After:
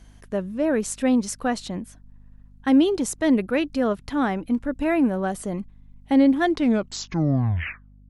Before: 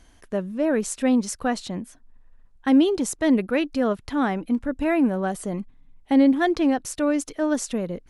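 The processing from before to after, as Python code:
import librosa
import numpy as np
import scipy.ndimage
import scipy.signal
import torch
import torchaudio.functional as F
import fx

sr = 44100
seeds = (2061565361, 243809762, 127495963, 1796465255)

y = fx.tape_stop_end(x, sr, length_s=1.65)
y = fx.add_hum(y, sr, base_hz=50, snr_db=27)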